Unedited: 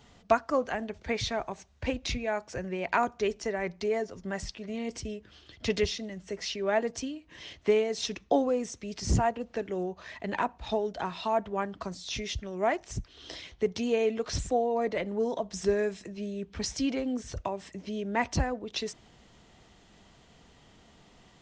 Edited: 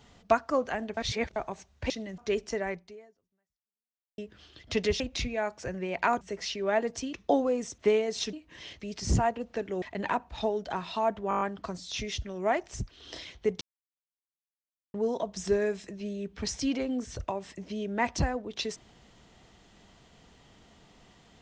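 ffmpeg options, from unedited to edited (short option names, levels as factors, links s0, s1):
-filter_complex "[0:a]asplit=21[s0][s1][s2][s3][s4][s5][s6][s7][s8][s9][s10][s11][s12][s13][s14][s15][s16][s17][s18][s19][s20];[s0]atrim=end=0.972[s21];[s1]atrim=start=0.968:end=1.362,asetpts=PTS-STARTPTS,areverse[s22];[s2]atrim=start=1.358:end=1.902[s23];[s3]atrim=start=5.928:end=6.212[s24];[s4]atrim=start=3.108:end=5.11,asetpts=PTS-STARTPTS,afade=t=out:st=0.502:d=1.5:c=exp[s25];[s5]atrim=start=5.11:end=5.932,asetpts=PTS-STARTPTS,afade=t=in:d=0.004:c=hsin[s26];[s6]atrim=start=1.898:end=3.112[s27];[s7]atrim=start=6.208:end=7.132[s28];[s8]atrim=start=8.148:end=8.802[s29];[s9]atrim=start=7.598:end=8.152[s30];[s10]atrim=start=7.128:end=7.602[s31];[s11]atrim=start=8.798:end=9.822[s32];[s12]atrim=start=10.108:end=11.602[s33];[s13]atrim=start=11.578:end=11.602[s34];[s14]atrim=start=11.578:end=11.602[s35];[s15]atrim=start=11.578:end=11.602[s36];[s16]atrim=start=11.578:end=11.602[s37];[s17]atrim=start=11.578:end=11.602[s38];[s18]atrim=start=11.578:end=13.78,asetpts=PTS-STARTPTS,afade=t=out:st=2.198:d=0.004:c=hsin[s39];[s19]atrim=start=13.78:end=15.11,asetpts=PTS-STARTPTS,volume=0[s40];[s20]atrim=start=15.11,asetpts=PTS-STARTPTS,afade=t=in:d=0.004:c=hsin[s41];[s21][s22]acrossfade=d=0.004:c1=hsin:c2=hsin[s42];[s42][s23]acrossfade=d=0.004:c1=hsin:c2=hsin[s43];[s43][s24]acrossfade=d=0.004:c1=hsin:c2=hsin[s44];[s25][s26]concat=n=2:v=0:a=1[s45];[s44][s45]acrossfade=d=0.004:c1=hsin:c2=hsin[s46];[s46][s27]acrossfade=d=0.004:c1=hsin:c2=hsin[s47];[s47][s28]acrossfade=d=0.004:c1=hsin:c2=hsin[s48];[s48][s29]acrossfade=d=0.004:c1=hsin:c2=hsin[s49];[s49][s30]acrossfade=d=0.004:c1=hsin:c2=hsin[s50];[s50][s31]acrossfade=d=0.004:c1=hsin:c2=hsin[s51];[s51][s32]acrossfade=d=0.004:c1=hsin:c2=hsin[s52];[s52][s33]acrossfade=d=0.004:c1=hsin:c2=hsin[s53];[s53][s34]acrossfade=d=0.004:c1=hsin:c2=hsin[s54];[s54][s35]acrossfade=d=0.004:c1=hsin:c2=hsin[s55];[s55][s36]acrossfade=d=0.004:c1=hsin:c2=hsin[s56];[s56][s37]acrossfade=d=0.004:c1=hsin:c2=hsin[s57];[s57][s38]acrossfade=d=0.004:c1=hsin:c2=hsin[s58];[s39][s40][s41]concat=n=3:v=0:a=1[s59];[s58][s59]acrossfade=d=0.004:c1=hsin:c2=hsin"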